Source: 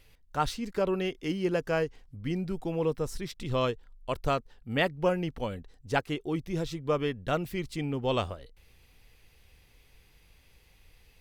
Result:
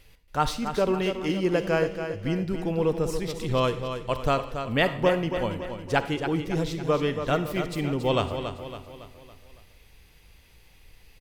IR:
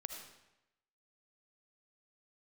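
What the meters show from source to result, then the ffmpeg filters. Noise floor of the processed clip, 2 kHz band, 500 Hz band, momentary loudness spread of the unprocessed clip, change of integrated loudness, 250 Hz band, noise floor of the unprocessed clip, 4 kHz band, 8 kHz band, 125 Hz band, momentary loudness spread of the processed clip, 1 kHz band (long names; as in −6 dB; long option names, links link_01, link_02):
−56 dBFS, +5.0 dB, +5.0 dB, 8 LU, +4.5 dB, +4.5 dB, −61 dBFS, +5.0 dB, +5.0 dB, +4.5 dB, 8 LU, +5.0 dB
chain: -filter_complex "[0:a]aecho=1:1:279|558|837|1116|1395:0.376|0.18|0.0866|0.0416|0.02,asplit=2[link_01][link_02];[1:a]atrim=start_sample=2205,asetrate=66150,aresample=44100[link_03];[link_02][link_03]afir=irnorm=-1:irlink=0,volume=2.5dB[link_04];[link_01][link_04]amix=inputs=2:normalize=0"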